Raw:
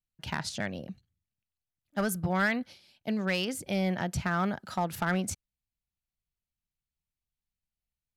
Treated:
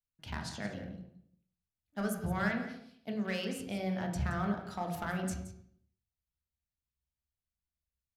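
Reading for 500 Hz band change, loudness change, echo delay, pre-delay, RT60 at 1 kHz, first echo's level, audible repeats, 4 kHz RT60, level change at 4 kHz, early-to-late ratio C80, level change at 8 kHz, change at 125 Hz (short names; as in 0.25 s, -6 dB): -5.0 dB, -5.5 dB, 0.172 s, 3 ms, 0.65 s, -13.0 dB, 1, 0.50 s, -7.5 dB, 8.0 dB, -8.0 dB, -3.5 dB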